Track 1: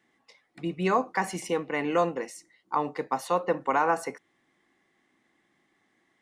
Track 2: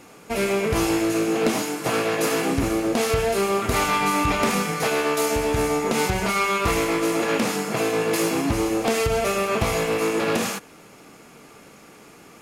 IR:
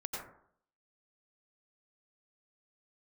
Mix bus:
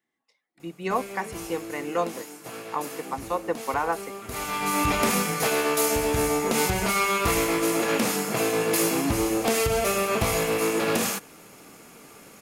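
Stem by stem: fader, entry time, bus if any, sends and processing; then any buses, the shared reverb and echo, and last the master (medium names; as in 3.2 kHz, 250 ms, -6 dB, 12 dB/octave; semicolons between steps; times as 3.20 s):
-1.0 dB, 0.00 s, no send, hum notches 60/120/180 Hz; upward expansion 1.5:1, over -45 dBFS
-2.0 dB, 0.60 s, no send, de-hum 48.15 Hz, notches 3; auto duck -14 dB, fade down 1.00 s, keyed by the first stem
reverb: none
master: treble shelf 9.4 kHz +11.5 dB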